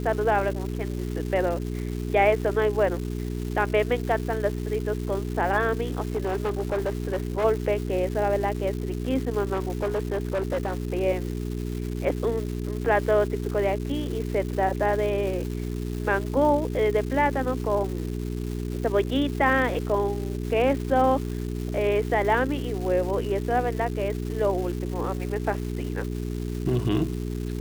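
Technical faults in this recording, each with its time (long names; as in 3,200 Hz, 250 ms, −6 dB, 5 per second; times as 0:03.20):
surface crackle 500 per second −33 dBFS
mains hum 60 Hz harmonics 7 −30 dBFS
0:06.08–0:07.45: clipping −22 dBFS
0:09.53–0:10.75: clipping −22 dBFS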